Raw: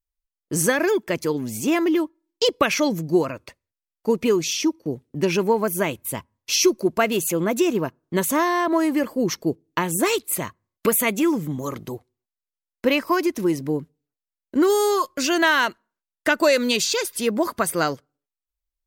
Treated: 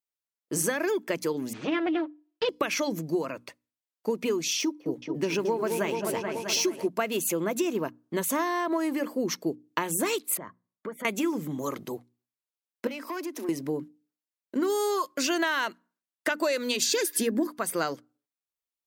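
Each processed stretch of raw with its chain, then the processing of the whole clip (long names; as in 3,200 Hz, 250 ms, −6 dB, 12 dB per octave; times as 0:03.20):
0:01.53–0:02.49: lower of the sound and its delayed copy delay 6.4 ms + low-pass filter 3,700 Hz 24 dB per octave
0:04.59–0:06.87: running median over 3 samples + echo whose low-pass opens from repeat to repeat 215 ms, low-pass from 750 Hz, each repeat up 2 octaves, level −6 dB
0:10.37–0:11.05: Savitzky-Golay smoothing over 41 samples + downward compressor 3 to 1, threshold −34 dBFS + multiband upward and downward expander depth 40%
0:12.87–0:13.49: Butterworth high-pass 230 Hz 96 dB per octave + downward compressor 5 to 1, threshold −26 dBFS + tube saturation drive 26 dB, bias 0.2
0:16.82–0:17.47: high-shelf EQ 4,600 Hz +8.5 dB + hollow resonant body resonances 290/1,700 Hz, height 17 dB, ringing for 25 ms
whole clip: downward compressor, threshold −21 dBFS; high-pass filter 190 Hz 12 dB per octave; mains-hum notches 60/120/180/240/300 Hz; level −2 dB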